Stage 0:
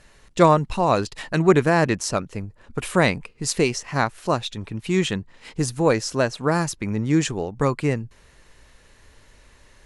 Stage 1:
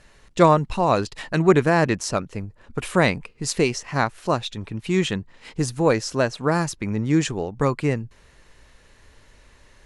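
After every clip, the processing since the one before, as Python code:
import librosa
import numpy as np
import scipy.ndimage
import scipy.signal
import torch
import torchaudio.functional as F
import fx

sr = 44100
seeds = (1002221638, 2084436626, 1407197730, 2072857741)

y = fx.high_shelf(x, sr, hz=10000.0, db=-6.0)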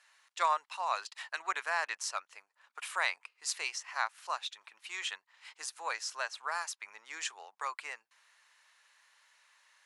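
y = scipy.signal.sosfilt(scipy.signal.butter(4, 910.0, 'highpass', fs=sr, output='sos'), x)
y = F.gain(torch.from_numpy(y), -8.0).numpy()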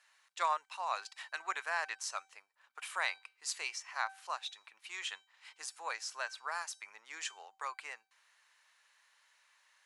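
y = fx.comb_fb(x, sr, f0_hz=770.0, decay_s=0.4, harmonics='all', damping=0.0, mix_pct=60)
y = F.gain(torch.from_numpy(y), 4.5).numpy()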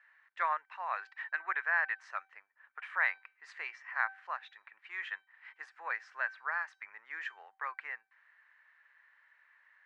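y = fx.lowpass_res(x, sr, hz=1800.0, q=4.3)
y = F.gain(torch.from_numpy(y), -3.5).numpy()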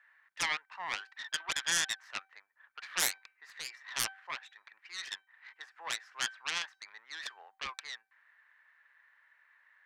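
y = fx.self_delay(x, sr, depth_ms=0.81)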